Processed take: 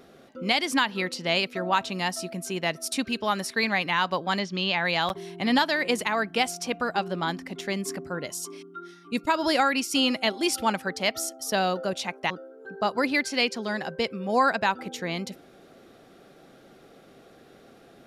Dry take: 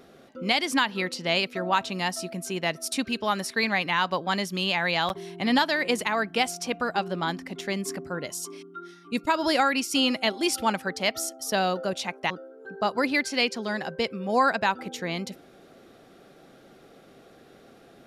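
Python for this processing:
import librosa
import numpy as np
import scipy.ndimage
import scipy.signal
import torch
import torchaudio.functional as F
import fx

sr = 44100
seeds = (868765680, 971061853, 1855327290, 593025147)

y = fx.lowpass(x, sr, hz=5600.0, slope=24, at=(4.39, 4.85))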